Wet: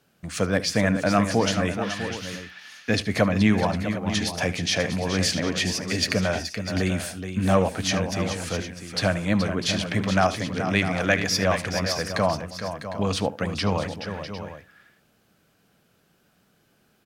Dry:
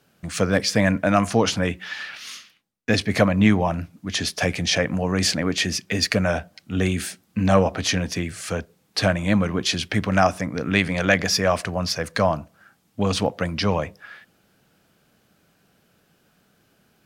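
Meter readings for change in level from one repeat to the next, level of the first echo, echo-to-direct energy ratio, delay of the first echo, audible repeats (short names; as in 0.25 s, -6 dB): no steady repeat, -17.0 dB, -6.0 dB, 74 ms, 4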